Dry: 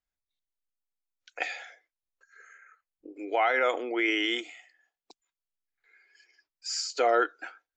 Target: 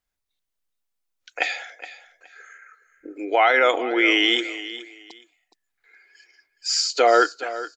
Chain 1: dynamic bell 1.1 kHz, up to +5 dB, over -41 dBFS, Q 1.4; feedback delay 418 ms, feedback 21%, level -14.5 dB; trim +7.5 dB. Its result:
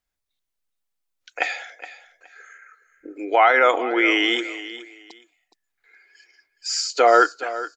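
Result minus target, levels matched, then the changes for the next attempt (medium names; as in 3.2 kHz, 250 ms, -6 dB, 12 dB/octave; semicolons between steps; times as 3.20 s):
4 kHz band -4.5 dB
change: dynamic bell 3.8 kHz, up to +5 dB, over -41 dBFS, Q 1.4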